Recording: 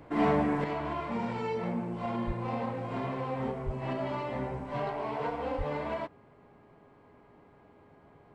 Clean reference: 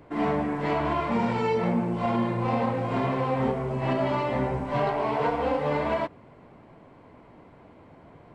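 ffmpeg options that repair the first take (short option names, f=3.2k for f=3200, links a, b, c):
-filter_complex "[0:a]bandreject=f=411.1:t=h:w=4,bandreject=f=822.2:t=h:w=4,bandreject=f=1.2333k:t=h:w=4,bandreject=f=1.6444k:t=h:w=4,asplit=3[a][b][c];[a]afade=t=out:st=2.26:d=0.02[d];[b]highpass=f=140:w=0.5412,highpass=f=140:w=1.3066,afade=t=in:st=2.26:d=0.02,afade=t=out:st=2.38:d=0.02[e];[c]afade=t=in:st=2.38:d=0.02[f];[d][e][f]amix=inputs=3:normalize=0,asplit=3[g][h][i];[g]afade=t=out:st=3.65:d=0.02[j];[h]highpass=f=140:w=0.5412,highpass=f=140:w=1.3066,afade=t=in:st=3.65:d=0.02,afade=t=out:st=3.77:d=0.02[k];[i]afade=t=in:st=3.77:d=0.02[l];[j][k][l]amix=inputs=3:normalize=0,asplit=3[m][n][o];[m]afade=t=out:st=5.57:d=0.02[p];[n]highpass=f=140:w=0.5412,highpass=f=140:w=1.3066,afade=t=in:st=5.57:d=0.02,afade=t=out:st=5.69:d=0.02[q];[o]afade=t=in:st=5.69:d=0.02[r];[p][q][r]amix=inputs=3:normalize=0,asetnsamples=n=441:p=0,asendcmd='0.64 volume volume 8dB',volume=0dB"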